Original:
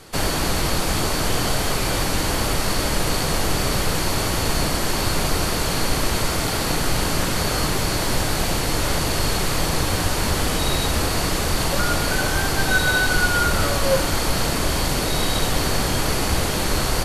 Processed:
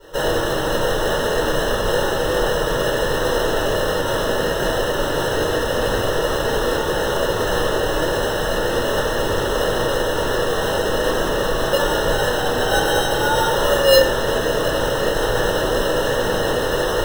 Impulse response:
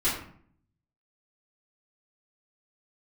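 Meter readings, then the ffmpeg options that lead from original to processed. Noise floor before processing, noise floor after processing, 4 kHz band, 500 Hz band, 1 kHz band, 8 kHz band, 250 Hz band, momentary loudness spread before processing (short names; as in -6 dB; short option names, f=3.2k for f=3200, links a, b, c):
-23 dBFS, -22 dBFS, -0.5 dB, +9.0 dB, +2.5 dB, -5.5 dB, 0.0 dB, 3 LU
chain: -filter_complex "[0:a]highpass=f=540:t=q:w=3.5,acrusher=samples=19:mix=1:aa=0.000001[a];[1:a]atrim=start_sample=2205,asetrate=57330,aresample=44100[b];[a][b]afir=irnorm=-1:irlink=0,volume=-8.5dB"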